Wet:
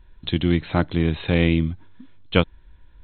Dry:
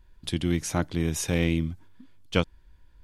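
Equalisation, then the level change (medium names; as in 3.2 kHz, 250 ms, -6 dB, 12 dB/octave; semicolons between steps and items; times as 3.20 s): brick-wall FIR low-pass 4.2 kHz; +6.0 dB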